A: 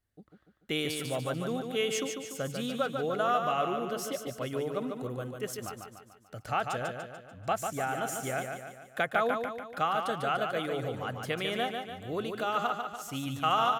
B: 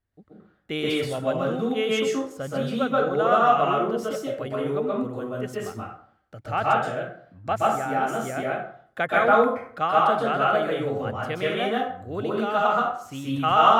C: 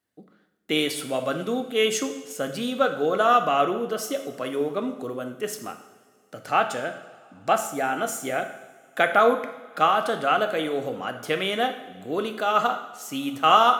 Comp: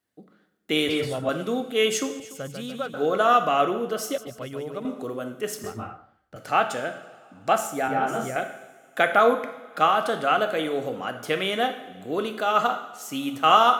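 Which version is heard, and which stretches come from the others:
C
0:00.89–0:01.29: punch in from B
0:02.20–0:02.94: punch in from A
0:04.18–0:04.85: punch in from A
0:05.64–0:06.36: punch in from B
0:07.88–0:08.36: punch in from B

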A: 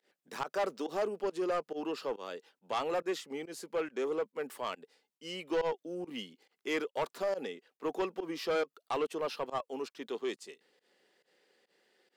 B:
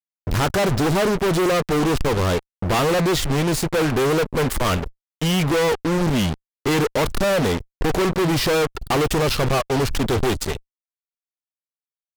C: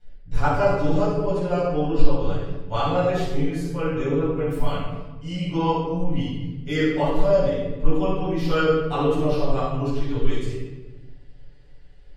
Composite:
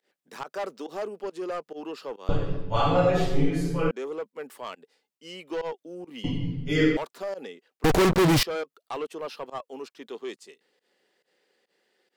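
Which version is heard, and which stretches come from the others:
A
0:02.29–0:03.91: punch in from C
0:06.24–0:06.97: punch in from C
0:07.84–0:08.43: punch in from B

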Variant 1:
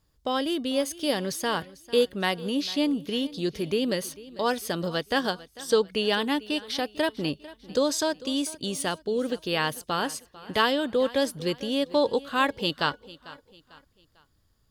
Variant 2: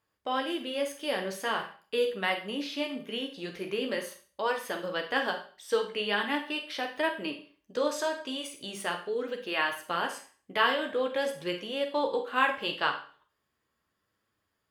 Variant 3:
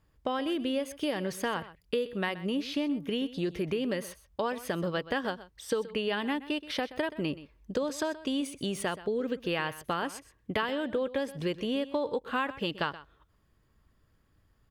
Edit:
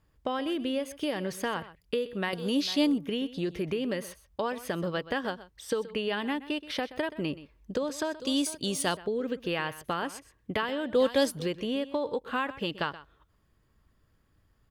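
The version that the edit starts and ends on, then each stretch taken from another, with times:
3
0:02.33–0:02.98: punch in from 1
0:08.20–0:08.97: punch in from 1
0:10.95–0:11.46: punch in from 1
not used: 2

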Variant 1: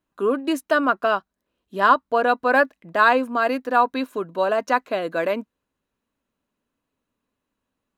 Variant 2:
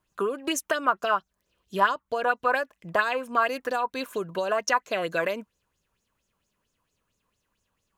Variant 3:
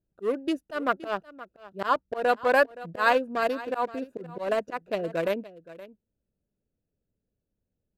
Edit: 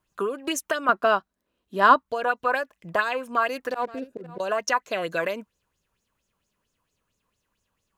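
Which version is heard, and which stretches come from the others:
2
0:00.89–0:02.03: punch in from 1
0:03.73–0:04.40: punch in from 3

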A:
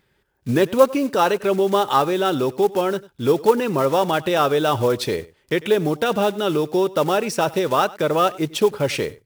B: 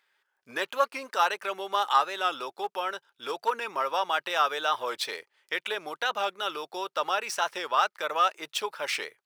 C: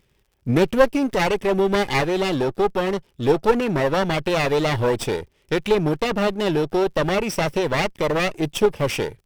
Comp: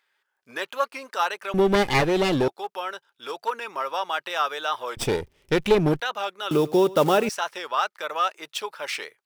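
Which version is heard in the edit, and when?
B
0:01.54–0:02.48: punch in from C
0:04.97–0:06.00: punch in from C
0:06.51–0:07.29: punch in from A

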